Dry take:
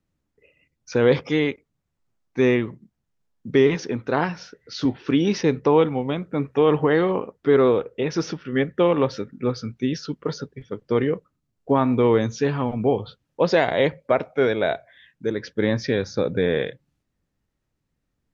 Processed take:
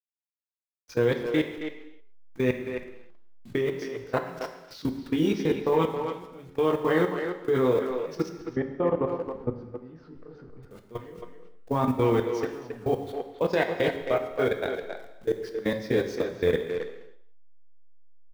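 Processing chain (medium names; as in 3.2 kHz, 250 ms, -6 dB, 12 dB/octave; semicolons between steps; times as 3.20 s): send-on-delta sampling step -39 dBFS; chorus voices 6, 0.25 Hz, delay 24 ms, depth 1.7 ms; level held to a coarse grid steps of 23 dB; 8.29–10.63 s: low-pass 1.2 kHz 12 dB/octave; speakerphone echo 270 ms, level -6 dB; gated-style reverb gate 340 ms falling, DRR 6.5 dB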